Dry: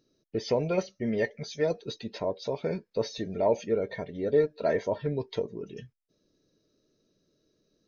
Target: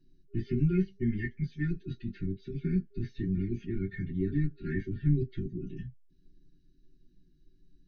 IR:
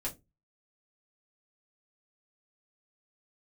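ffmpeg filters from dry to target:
-filter_complex "[0:a]acrossover=split=2900[link_01][link_02];[link_02]acompressor=threshold=-60dB:ratio=4:attack=1:release=60[link_03];[link_01][link_03]amix=inputs=2:normalize=0[link_04];[1:a]atrim=start_sample=2205,atrim=end_sample=3087,asetrate=74970,aresample=44100[link_05];[link_04][link_05]afir=irnorm=-1:irlink=0,afftfilt=real='re*(1-between(b*sr/4096,400,1400))':imag='im*(1-between(b*sr/4096,400,1400))':win_size=4096:overlap=0.75,aemphasis=mode=reproduction:type=bsi"

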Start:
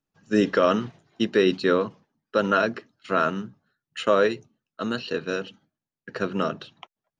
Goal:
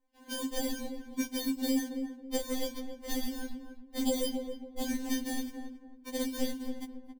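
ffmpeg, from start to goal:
ffmpeg -i in.wav -filter_complex "[0:a]asettb=1/sr,asplit=3[link_01][link_02][link_03];[link_01]atrim=end=4.074[link_04];[link_02]atrim=start=4.07:end=4.9,asetpts=PTS-STARTPTS,afade=type=in:duration=0.004:curve=qsin,afade=type=out:start_time=0.826:duration=0.004:curve=qsin,aecho=1:1:7.3:0.89,atrim=end_sample=36603[link_05];[link_03]atrim=start=4.896[link_06];[link_04][link_05]acrossfade=duration=0.004:curve1=hsin:curve2=qsin[link_07];[link_07][link_06]acrossfade=duration=0.004:curve1=qsin:curve2=hsin,acompressor=threshold=-31dB:ratio=6,acrusher=samples=33:mix=1:aa=0.000001,acrossover=split=450|3000[link_08][link_09][link_10];[link_09]acompressor=threshold=-58dB:ratio=2.5[link_11];[link_08][link_11][link_10]amix=inputs=3:normalize=0,asplit=2[link_12][link_13];[link_13]adelay=272,lowpass=frequency=1000:poles=1,volume=-5.5dB,asplit=2[link_14][link_15];[link_15]adelay=272,lowpass=frequency=1000:poles=1,volume=0.33,asplit=2[link_16][link_17];[link_17]adelay=272,lowpass=frequency=1000:poles=1,volume=0.33,asplit=2[link_18][link_19];[link_19]adelay=272,lowpass=frequency=1000:poles=1,volume=0.33[link_20];[link_12][link_14][link_16][link_18][link_20]amix=inputs=5:normalize=0,afftfilt=real='re*3.46*eq(mod(b,12),0)':imag='im*3.46*eq(mod(b,12),0)':win_size=2048:overlap=0.75,volume=8dB" out.wav

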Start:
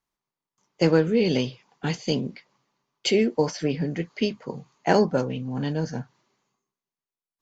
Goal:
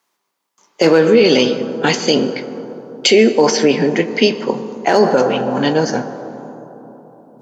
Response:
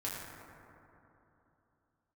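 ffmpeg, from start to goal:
-filter_complex "[0:a]asoftclip=type=hard:threshold=-9.5dB,highpass=320,asplit=2[link_01][link_02];[1:a]atrim=start_sample=2205,asetrate=33516,aresample=44100[link_03];[link_02][link_03]afir=irnorm=-1:irlink=0,volume=-13dB[link_04];[link_01][link_04]amix=inputs=2:normalize=0,alimiter=level_in=16.5dB:limit=-1dB:release=50:level=0:latency=1,volume=-1dB"

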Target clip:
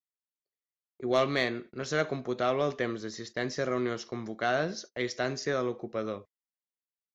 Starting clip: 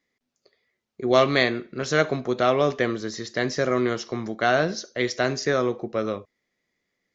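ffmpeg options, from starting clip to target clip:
ffmpeg -i in.wav -af "aeval=exprs='0.668*(cos(1*acos(clip(val(0)/0.668,-1,1)))-cos(1*PI/2))+0.0237*(cos(5*acos(clip(val(0)/0.668,-1,1)))-cos(5*PI/2))':channel_layout=same,agate=range=-29dB:threshold=-37dB:ratio=16:detection=peak,volume=-8.5dB" out.wav

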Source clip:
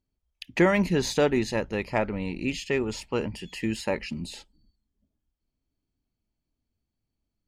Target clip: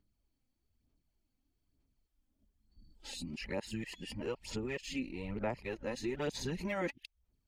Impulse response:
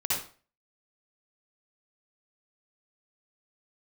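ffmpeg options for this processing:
-af "areverse,aphaser=in_gain=1:out_gain=1:delay=3.9:decay=0.5:speed=1.1:type=sinusoidal,acompressor=threshold=-44dB:ratio=2,volume=-1dB"

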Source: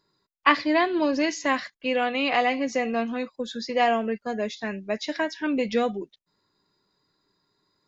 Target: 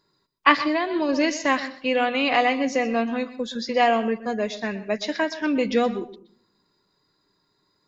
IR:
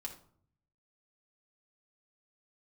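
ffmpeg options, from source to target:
-filter_complex "[0:a]asplit=2[link_01][link_02];[link_02]bass=frequency=250:gain=3,treble=frequency=4000:gain=5[link_03];[1:a]atrim=start_sample=2205,lowpass=5400,adelay=121[link_04];[link_03][link_04]afir=irnorm=-1:irlink=0,volume=-12dB[link_05];[link_01][link_05]amix=inputs=2:normalize=0,asplit=3[link_06][link_07][link_08];[link_06]afade=type=out:start_time=0.67:duration=0.02[link_09];[link_07]acompressor=threshold=-23dB:ratio=4,afade=type=in:start_time=0.67:duration=0.02,afade=type=out:start_time=1.08:duration=0.02[link_10];[link_08]afade=type=in:start_time=1.08:duration=0.02[link_11];[link_09][link_10][link_11]amix=inputs=3:normalize=0,volume=2.5dB"

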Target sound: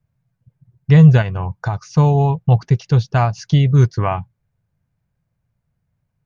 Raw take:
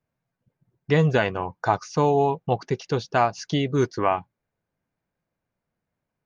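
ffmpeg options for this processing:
ffmpeg -i in.wav -filter_complex "[0:a]lowshelf=frequency=190:width_type=q:width=1.5:gain=13.5,asplit=3[link_01][link_02][link_03];[link_01]afade=type=out:start_time=1.21:duration=0.02[link_04];[link_02]acompressor=threshold=-19dB:ratio=6,afade=type=in:start_time=1.21:duration=0.02,afade=type=out:start_time=1.93:duration=0.02[link_05];[link_03]afade=type=in:start_time=1.93:duration=0.02[link_06];[link_04][link_05][link_06]amix=inputs=3:normalize=0,volume=1.5dB" out.wav

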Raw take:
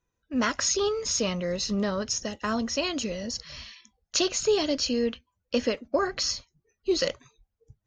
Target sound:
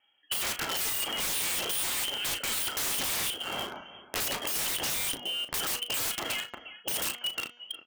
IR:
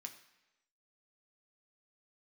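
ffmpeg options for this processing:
-filter_complex "[0:a]asplit=2[link_01][link_02];[link_02]aecho=0:1:357|714:0.141|0.0226[link_03];[link_01][link_03]amix=inputs=2:normalize=0,lowpass=frequency=2800:width_type=q:width=0.5098,lowpass=frequency=2800:width_type=q:width=0.6013,lowpass=frequency=2800:width_type=q:width=0.9,lowpass=frequency=2800:width_type=q:width=2.563,afreqshift=-3300,highpass=41,asplit=2[link_04][link_05];[link_05]acrusher=bits=6:mix=0:aa=0.000001,volume=-3.5dB[link_06];[link_04][link_06]amix=inputs=2:normalize=0,alimiter=limit=-20dB:level=0:latency=1:release=32,equalizer=frequency=360:width=0.38:gain=8,bandreject=frequency=240.9:width_type=h:width=4,bandreject=frequency=481.8:width_type=h:width=4,bandreject=frequency=722.7:width_type=h:width=4,bandreject=frequency=963.6:width_type=h:width=4,bandreject=frequency=1204.5:width_type=h:width=4,bandreject=frequency=1445.4:width_type=h:width=4,bandreject=frequency=1686.3:width_type=h:width=4,bandreject=frequency=1927.2:width_type=h:width=4,bandreject=frequency=2168.1:width_type=h:width=4,bandreject=frequency=2409:width_type=h:width=4,bandreject=frequency=2649.9:width_type=h:width=4,bandreject=frequency=2890.8:width_type=h:width=4,bandreject=frequency=3131.7:width_type=h:width=4,bandreject=frequency=3372.6:width_type=h:width=4,bandreject=frequency=3613.5:width_type=h:width=4,bandreject=frequency=3854.4:width_type=h:width=4,bandreject=frequency=4095.3:width_type=h:width=4,bandreject=frequency=4336.2:width_type=h:width=4,bandreject=frequency=4577.1:width_type=h:width=4,bandreject=frequency=4818:width_type=h:width=4,bandreject=frequency=5058.9:width_type=h:width=4,bandreject=frequency=5299.8:width_type=h:width=4,bandreject=frequency=5540.7:width_type=h:width=4,bandreject=frequency=5781.6:width_type=h:width=4,bandreject=frequency=6022.5:width_type=h:width=4,bandreject=frequency=6263.4:width_type=h:width=4,bandreject=frequency=6504.3:width_type=h:width=4,bandreject=frequency=6745.2:width_type=h:width=4,bandreject=frequency=6986.1:width_type=h:width=4,aeval=exprs='(mod(23.7*val(0)+1,2)-1)/23.7':channel_layout=same,acompressor=threshold=-42dB:ratio=2.5,asplit=2[link_07][link_08];[link_08]adelay=36,volume=-10.5dB[link_09];[link_07][link_09]amix=inputs=2:normalize=0,volume=9dB"

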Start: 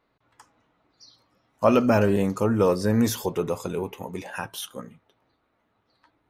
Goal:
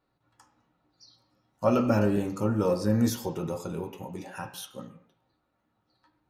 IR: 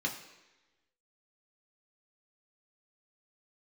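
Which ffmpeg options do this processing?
-filter_complex "[0:a]asplit=2[link_01][link_02];[1:a]atrim=start_sample=2205,afade=type=out:start_time=0.3:duration=0.01,atrim=end_sample=13671,lowpass=4800[link_03];[link_02][link_03]afir=irnorm=-1:irlink=0,volume=-6.5dB[link_04];[link_01][link_04]amix=inputs=2:normalize=0,volume=-6dB"

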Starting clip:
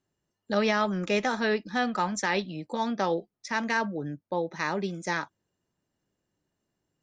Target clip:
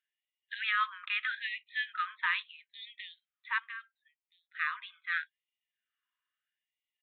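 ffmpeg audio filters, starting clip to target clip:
ffmpeg -i in.wav -filter_complex "[0:a]asettb=1/sr,asplit=3[link_01][link_02][link_03];[link_01]atrim=end=3.584[link_04];[link_02]atrim=start=3.58:end=4.55,asetpts=PTS-STARTPTS,afade=type=in:duration=0.004:curve=qsin,afade=type=out:start_time=0.966:duration=0.004:curve=qsin,acrossover=split=180[link_05][link_06];[link_06]acompressor=threshold=-49dB:ratio=2[link_07];[link_05][link_07]amix=inputs=2:normalize=0[link_08];[link_03]atrim=start=4.546[link_09];[link_04][link_08]acrossfade=duration=0.004:curve1=hsin:curve2=qsin[link_10];[link_10][link_09]acrossfade=duration=0.004:curve1=qsin:curve2=hsin,aresample=8000,aresample=44100,afftfilt=real='re*gte(b*sr/1024,930*pow(1900/930,0.5+0.5*sin(2*PI*0.77*pts/sr)))':imag='im*gte(b*sr/1024,930*pow(1900/930,0.5+0.5*sin(2*PI*0.77*pts/sr)))':win_size=1024:overlap=0.75" out.wav

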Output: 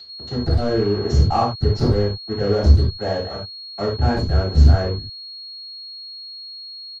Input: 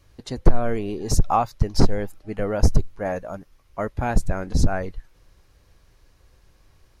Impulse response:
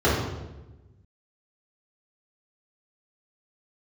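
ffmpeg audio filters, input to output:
-filter_complex "[0:a]agate=range=-33dB:threshold=-43dB:ratio=3:detection=peak,aresample=16000,acrusher=bits=4:mix=0:aa=0.5,aresample=44100,aeval=exprs='val(0)+0.0562*sin(2*PI*4300*n/s)':channel_layout=same,asoftclip=type=hard:threshold=-12dB[link_01];[1:a]atrim=start_sample=2205,atrim=end_sample=4410[link_02];[link_01][link_02]afir=irnorm=-1:irlink=0,volume=-18dB"

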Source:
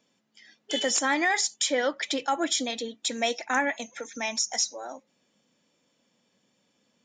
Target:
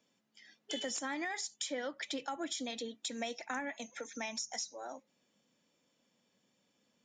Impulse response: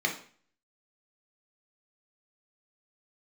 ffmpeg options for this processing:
-filter_complex "[0:a]acrossover=split=220[link_01][link_02];[link_02]acompressor=threshold=-32dB:ratio=4[link_03];[link_01][link_03]amix=inputs=2:normalize=0,volume=-5.5dB"

